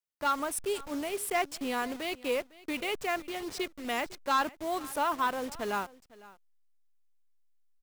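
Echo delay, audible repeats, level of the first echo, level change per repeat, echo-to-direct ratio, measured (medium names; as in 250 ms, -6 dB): 505 ms, 1, -20.5 dB, no regular repeats, -20.5 dB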